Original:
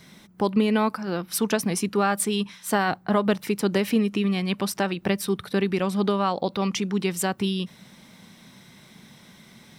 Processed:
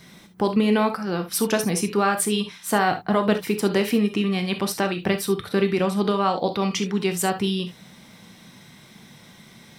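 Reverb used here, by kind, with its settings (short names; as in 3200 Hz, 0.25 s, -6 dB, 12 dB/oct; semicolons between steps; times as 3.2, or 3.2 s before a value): non-linear reverb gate 90 ms flat, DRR 6 dB; gain +1.5 dB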